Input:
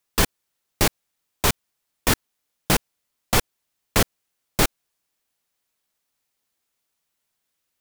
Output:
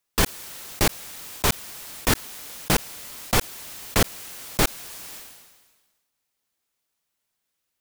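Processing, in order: decay stretcher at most 42 dB/s; trim -1.5 dB

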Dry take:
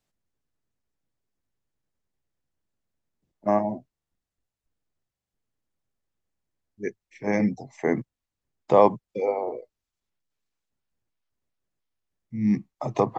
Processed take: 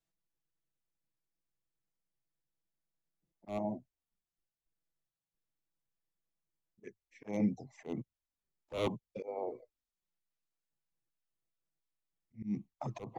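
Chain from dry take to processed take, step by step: wavefolder -13.5 dBFS; touch-sensitive flanger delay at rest 6.1 ms, full sweep at -23 dBFS; slow attack 195 ms; trim -7 dB

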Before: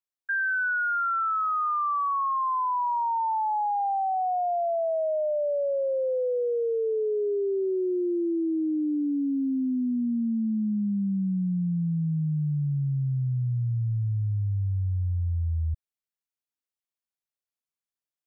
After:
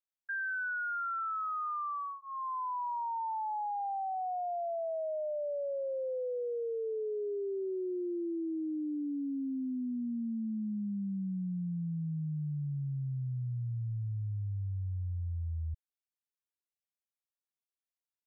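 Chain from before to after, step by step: band-stop 1.1 kHz, Q 16; trim -9 dB

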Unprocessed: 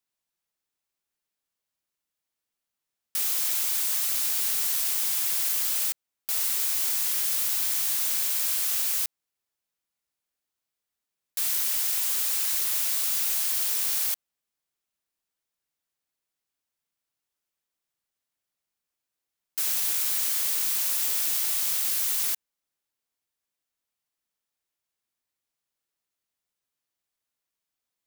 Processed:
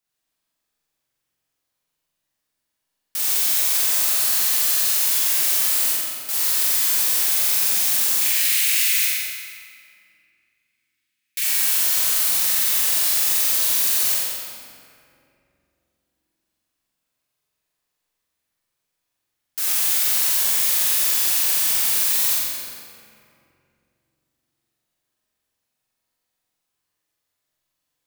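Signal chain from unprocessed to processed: 8.21–11.44 s: resonant high-pass 2.2 kHz, resonance Q 3.5; flutter echo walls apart 7.7 m, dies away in 1.3 s; reverberation RT60 2.6 s, pre-delay 5 ms, DRR 0 dB; trim +1.5 dB

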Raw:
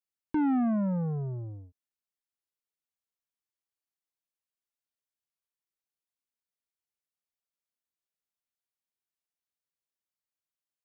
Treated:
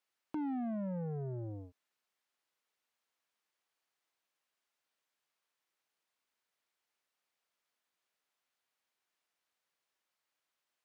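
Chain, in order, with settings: compression, threshold -38 dBFS, peak gain reduction 11.5 dB; overdrive pedal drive 23 dB, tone 2.3 kHz, clips at -24.5 dBFS; trim -3 dB

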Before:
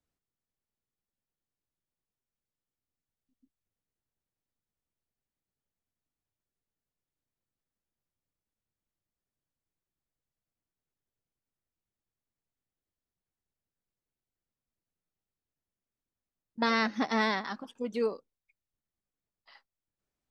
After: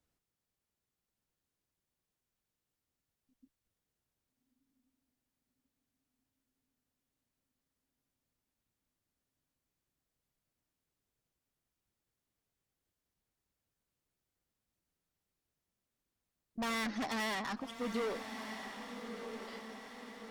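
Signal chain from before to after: valve stage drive 38 dB, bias 0.2; echo that smears into a reverb 1277 ms, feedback 56%, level -7.5 dB; trim +4 dB

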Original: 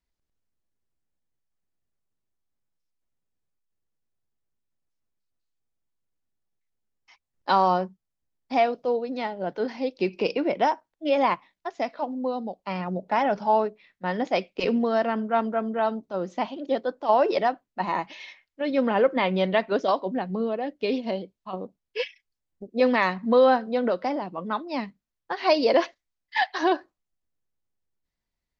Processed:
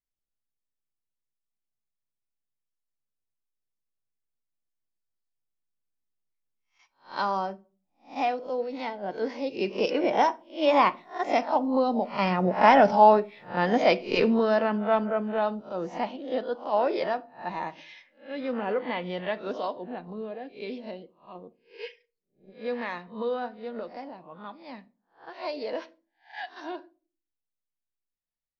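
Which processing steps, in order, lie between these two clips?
reverse spectral sustain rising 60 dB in 0.32 s; Doppler pass-by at 12.50 s, 14 m/s, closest 17 m; on a send: reverberation RT60 0.35 s, pre-delay 4 ms, DRR 13.5 dB; on the sum: trim +5.5 dB

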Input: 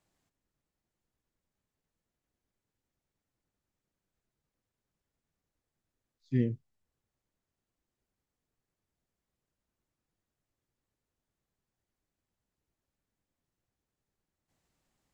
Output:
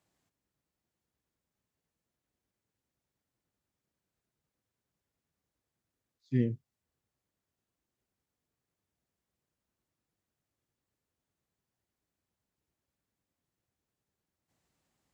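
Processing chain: high-pass 59 Hz

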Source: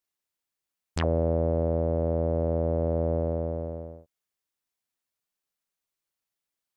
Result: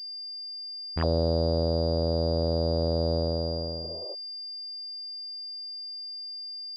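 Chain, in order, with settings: spectral replace 3.86–4.12 s, 340–1300 Hz before; class-D stage that switches slowly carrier 4.8 kHz

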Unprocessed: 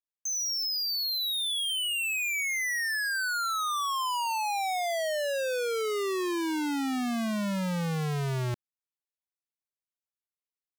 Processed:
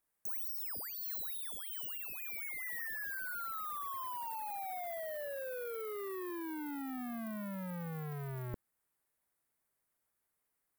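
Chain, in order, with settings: sine folder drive 7 dB, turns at -29 dBFS; high-order bell 4.2 kHz -10 dB; trim +2.5 dB

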